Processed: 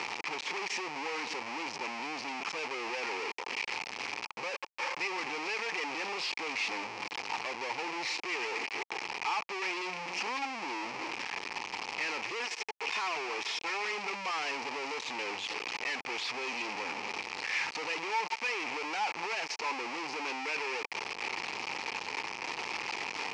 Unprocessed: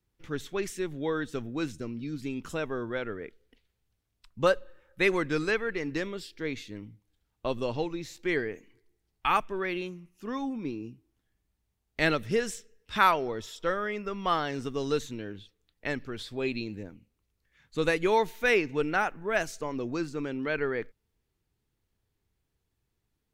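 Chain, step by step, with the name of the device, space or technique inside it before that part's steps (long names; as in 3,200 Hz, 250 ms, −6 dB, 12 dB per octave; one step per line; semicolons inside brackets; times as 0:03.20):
0:12.24–0:13.85: comb filter 2.8 ms, depth 75%
high-frequency loss of the air 120 metres
parametric band 810 Hz +3 dB 0.55 octaves
home computer beeper (sign of each sample alone; loudspeaker in its box 580–5,500 Hz, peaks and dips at 620 Hz −9 dB, 880 Hz +7 dB, 1,500 Hz −8 dB, 2,400 Hz +10 dB, 3,600 Hz −8 dB, 5,300 Hz +3 dB)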